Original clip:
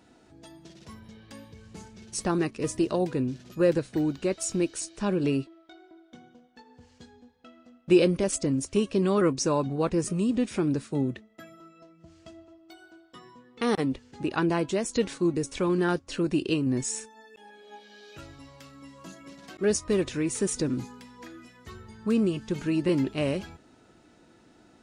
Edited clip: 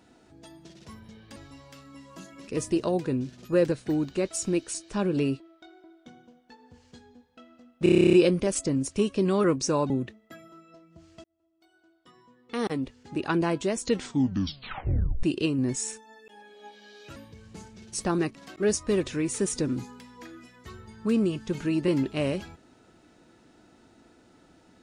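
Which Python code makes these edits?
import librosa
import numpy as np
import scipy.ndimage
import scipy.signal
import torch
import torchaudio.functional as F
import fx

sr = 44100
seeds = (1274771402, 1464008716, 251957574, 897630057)

y = fx.edit(x, sr, fx.swap(start_s=1.36, length_s=1.19, other_s=18.24, other_length_s=1.12),
    fx.stutter(start_s=7.9, slice_s=0.03, count=11),
    fx.cut(start_s=9.67, length_s=1.31),
    fx.fade_in_span(start_s=12.32, length_s=2.11),
    fx.tape_stop(start_s=15.0, length_s=1.31), tone=tone)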